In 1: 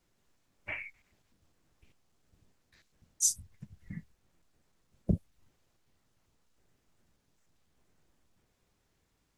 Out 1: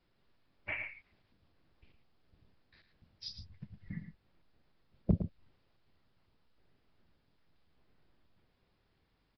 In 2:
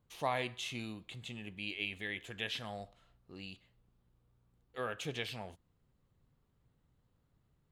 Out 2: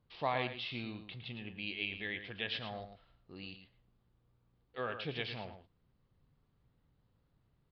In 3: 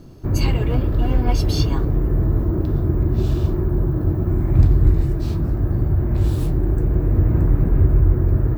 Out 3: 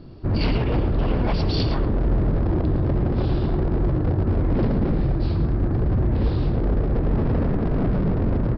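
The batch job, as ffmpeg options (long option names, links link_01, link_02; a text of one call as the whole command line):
ffmpeg -i in.wav -filter_complex "[0:a]aresample=11025,aeval=exprs='0.168*(abs(mod(val(0)/0.168+3,4)-2)-1)':channel_layout=same,aresample=44100,asplit=2[link_01][link_02];[link_02]adelay=110.8,volume=-9dB,highshelf=frequency=4000:gain=-2.49[link_03];[link_01][link_03]amix=inputs=2:normalize=0" out.wav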